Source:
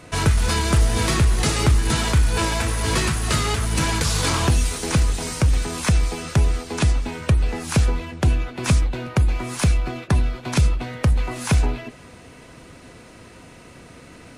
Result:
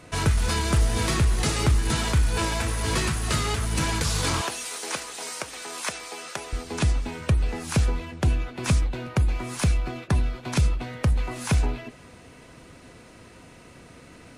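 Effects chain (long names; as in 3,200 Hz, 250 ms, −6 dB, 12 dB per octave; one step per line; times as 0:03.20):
0:04.41–0:06.53: high-pass filter 530 Hz 12 dB per octave
level −4 dB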